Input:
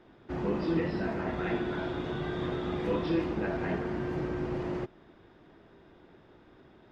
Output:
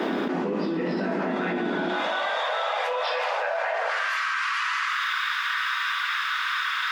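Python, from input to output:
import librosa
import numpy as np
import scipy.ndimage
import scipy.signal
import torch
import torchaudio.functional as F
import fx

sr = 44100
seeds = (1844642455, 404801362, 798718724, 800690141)

y = fx.steep_highpass(x, sr, hz=fx.steps((0.0, 170.0), (1.88, 530.0), (3.88, 1100.0)), slope=72)
y = fx.rev_fdn(y, sr, rt60_s=0.77, lf_ratio=1.2, hf_ratio=0.9, size_ms=71.0, drr_db=6.5)
y = fx.env_flatten(y, sr, amount_pct=100)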